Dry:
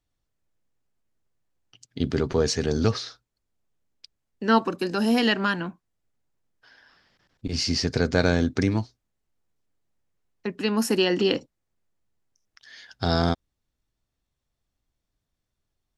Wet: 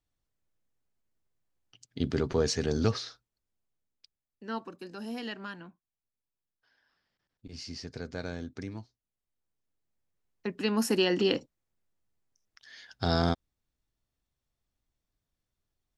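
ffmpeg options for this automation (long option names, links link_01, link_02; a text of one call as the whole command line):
ffmpeg -i in.wav -af "volume=8dB,afade=type=out:start_time=3.04:duration=1.39:silence=0.251189,afade=type=in:start_time=8.82:duration=1.7:silence=0.237137" out.wav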